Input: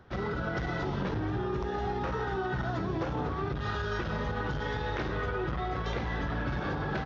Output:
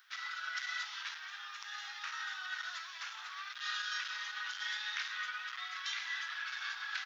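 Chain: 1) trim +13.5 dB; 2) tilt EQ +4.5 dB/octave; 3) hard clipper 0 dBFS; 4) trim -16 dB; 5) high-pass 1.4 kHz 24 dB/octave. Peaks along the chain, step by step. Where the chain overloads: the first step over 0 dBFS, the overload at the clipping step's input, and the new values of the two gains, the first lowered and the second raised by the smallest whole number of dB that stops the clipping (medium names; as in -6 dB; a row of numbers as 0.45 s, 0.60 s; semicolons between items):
-8.0 dBFS, -3.5 dBFS, -3.5 dBFS, -19.5 dBFS, -22.0 dBFS; nothing clips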